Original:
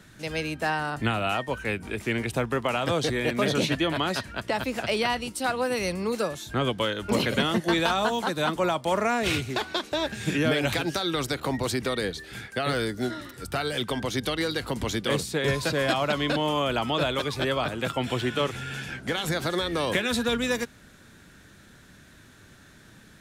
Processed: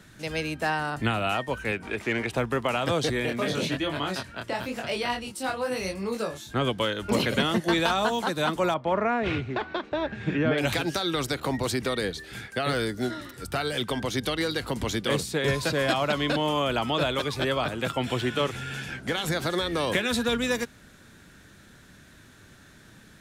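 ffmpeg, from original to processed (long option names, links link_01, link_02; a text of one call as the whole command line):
ffmpeg -i in.wav -filter_complex "[0:a]asettb=1/sr,asplit=3[link_01][link_02][link_03];[link_01]atrim=end=1.724[link_04];[link_02]atrim=start=1.72:end=2.38,asetpts=PTS-STARTPTS,afade=type=in:duration=0.004:curve=qsin,afade=type=out:start_time=0.656:duration=0.004:curve=qsin,asplit=2[link_05][link_06];[link_06]highpass=frequency=720:poles=1,volume=11dB,asoftclip=type=tanh:threshold=-13.5dB[link_07];[link_05][link_07]amix=inputs=2:normalize=0,lowpass=frequency=2100:poles=1,volume=-6dB[link_08];[link_03]atrim=start=2.376[link_09];[link_04][link_08]acrossfade=duration=0.004:curve1=hsin:curve2=qsin[link_10];[link_10][link_09]acrossfade=duration=0.004:curve1=qsin:curve2=hsin,asplit=3[link_11][link_12][link_13];[link_11]afade=type=out:start_time=3.25:duration=0.02[link_14];[link_12]flanger=delay=20:depth=6.7:speed=1,afade=type=in:start_time=3.25:duration=0.02,afade=type=out:start_time=6.54:duration=0.02[link_15];[link_13]afade=type=in:start_time=6.54:duration=0.02[link_16];[link_14][link_15][link_16]amix=inputs=3:normalize=0,asettb=1/sr,asplit=3[link_17][link_18][link_19];[link_17]atrim=end=8.744[link_20];[link_18]atrim=start=8.74:end=10.58,asetpts=PTS-STARTPTS,afade=type=in:duration=0.004:curve=qsin,afade=type=out:start_time=1.836:duration=0.004:curve=qsin,lowpass=2100[link_21];[link_19]atrim=start=10.576[link_22];[link_20][link_21]acrossfade=duration=0.004:curve1=hsin:curve2=qsin[link_23];[link_23][link_22]acrossfade=duration=0.004:curve1=qsin:curve2=hsin" out.wav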